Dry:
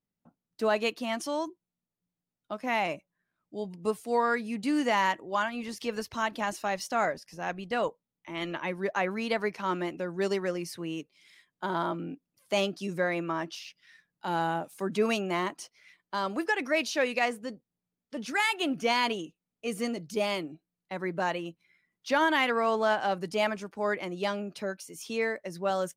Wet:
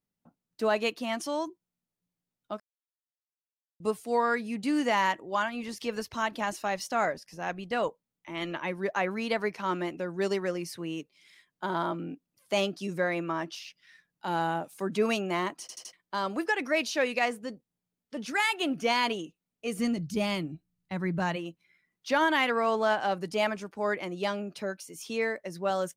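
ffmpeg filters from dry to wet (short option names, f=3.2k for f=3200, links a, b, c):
-filter_complex "[0:a]asplit=3[a][b][c];[a]afade=t=out:st=19.78:d=0.02[d];[b]asubboost=boost=5.5:cutoff=180,afade=t=in:st=19.78:d=0.02,afade=t=out:st=21.35:d=0.02[e];[c]afade=t=in:st=21.35:d=0.02[f];[d][e][f]amix=inputs=3:normalize=0,asplit=7[g][h][i][j][k][l][m];[g]atrim=end=2.6,asetpts=PTS-STARTPTS,afade=t=out:st=2.596:d=0.004:c=hsin[n];[h]atrim=start=2.6:end=3.8,asetpts=PTS-STARTPTS,volume=0[o];[i]atrim=start=3.8:end=15.692,asetpts=PTS-STARTPTS,afade=t=in:d=0.004:c=hsin[p];[j]atrim=start=15.608:end=15.692[q];[k]atrim=start=15.608:end=15.692[r];[l]atrim=start=15.608:end=15.692[s];[m]atrim=start=15.928[t];[n][o][p]concat=n=3:v=0:a=1[u];[u][q]acrossfade=d=0.004:c1=hsin:c2=hsin[v];[v][r]acrossfade=d=0.004:c1=hsin:c2=hsin[w];[w][s]acrossfade=d=0.004:c1=hsin:c2=hsin[x];[x][t]acrossfade=d=0.004:c1=hsin:c2=hsin"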